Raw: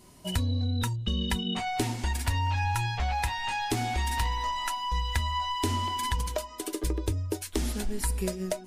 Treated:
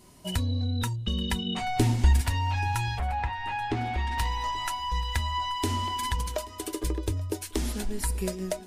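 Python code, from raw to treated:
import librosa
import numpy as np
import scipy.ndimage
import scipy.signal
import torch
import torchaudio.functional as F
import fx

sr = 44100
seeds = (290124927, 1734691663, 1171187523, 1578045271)

y = fx.low_shelf(x, sr, hz=240.0, db=11.5, at=(1.61, 2.21))
y = fx.lowpass(y, sr, hz=fx.line((2.98, 1700.0), (4.17, 3200.0)), slope=12, at=(2.98, 4.17), fade=0.02)
y = fx.echo_feedback(y, sr, ms=831, feedback_pct=45, wet_db=-21)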